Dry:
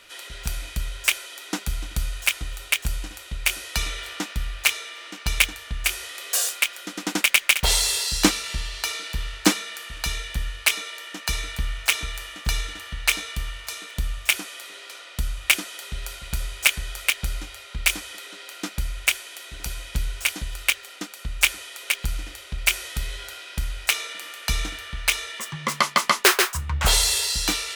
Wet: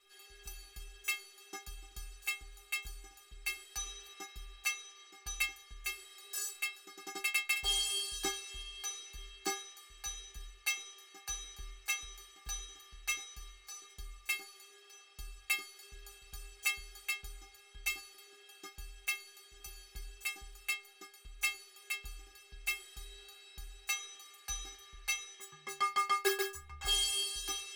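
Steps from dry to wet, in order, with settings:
stiff-string resonator 390 Hz, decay 0.31 s, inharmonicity 0.008

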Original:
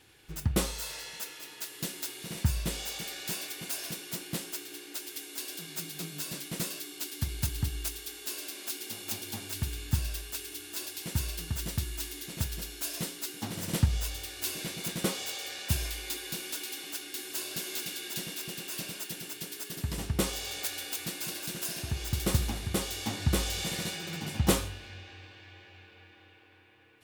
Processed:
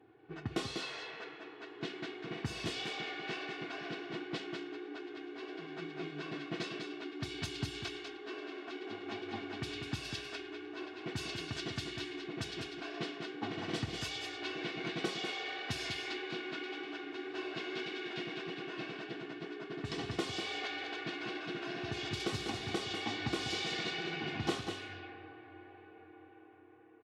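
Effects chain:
Chebyshev low-pass filter 4,100 Hz, order 2
low-pass that shuts in the quiet parts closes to 800 Hz, open at −27.5 dBFS
high-pass filter 130 Hz 24 dB per octave
comb filter 2.7 ms, depth 65%
downward compressor 2.5 to 1, threshold −39 dBFS, peak gain reduction 13 dB
tape wow and flutter 22 cents
single-tap delay 196 ms −6.5 dB
level +2.5 dB

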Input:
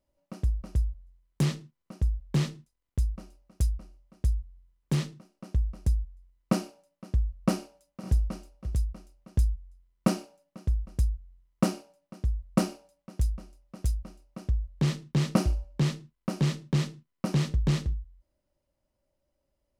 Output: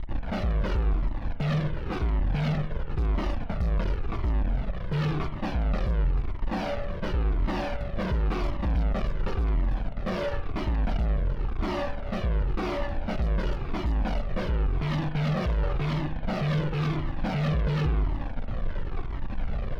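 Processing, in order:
loose part that buzzes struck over −22 dBFS, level −26 dBFS
low-shelf EQ 130 Hz −6 dB
in parallel at 0 dB: compressor whose output falls as the input rises −35 dBFS, ratio −0.5
on the sum: leveller curve on the samples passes 5
background noise brown −38 dBFS
tuned comb filter 580 Hz, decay 0.2 s, harmonics all, mix 60%
fuzz pedal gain 49 dB, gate −51 dBFS
high-frequency loss of the air 330 metres
spring reverb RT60 1.3 s, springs 40/46 ms, chirp 55 ms, DRR 9 dB
flanger whose copies keep moving one way falling 0.94 Hz
level −8 dB

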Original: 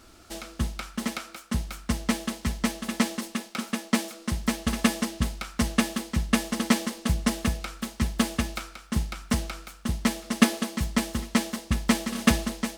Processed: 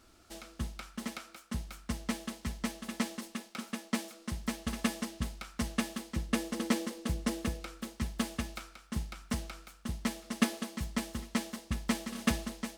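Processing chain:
0:06.15–0:07.99: hollow resonant body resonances 330/490 Hz, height 8 dB
level −9 dB

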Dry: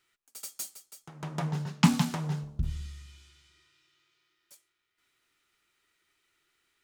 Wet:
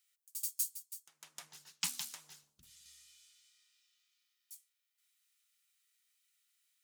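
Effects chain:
parametric band 650 Hz −5.5 dB 2.6 octaves
0:00.49–0:02.86: harmonic and percussive parts rebalanced harmonic −9 dB
first difference
level +1 dB

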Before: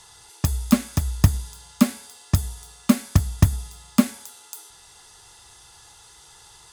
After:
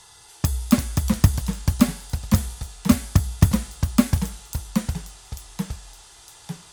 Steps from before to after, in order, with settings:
delay with pitch and tempo change per echo 286 ms, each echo −2 semitones, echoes 3, each echo −6 dB

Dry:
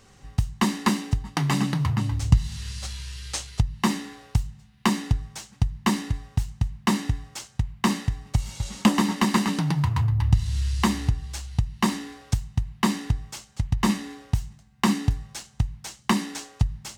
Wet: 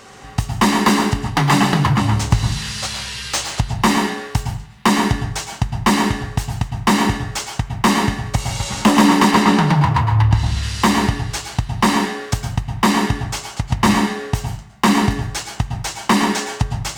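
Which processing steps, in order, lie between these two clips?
mid-hump overdrive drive 24 dB, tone 1,200 Hz, clips at −4 dBFS
high-shelf EQ 6,200 Hz +11 dB, from 0:09.31 +2.5 dB, from 0:10.63 +10 dB
convolution reverb RT60 0.45 s, pre-delay 102 ms, DRR 5 dB
level +2.5 dB

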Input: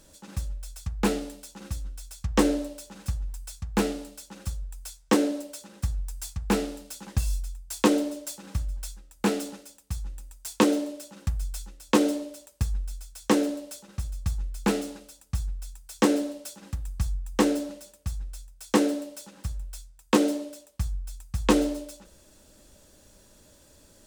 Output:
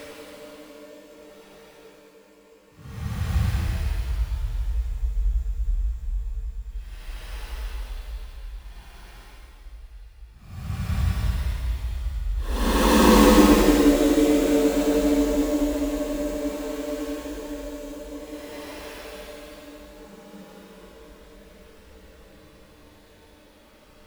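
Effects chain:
sample-rate reduction 7,300 Hz, jitter 20%
tuned comb filter 50 Hz, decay 1.3 s, harmonics all, mix 50%
extreme stretch with random phases 14×, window 0.10 s, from 0:20.56
level +8 dB

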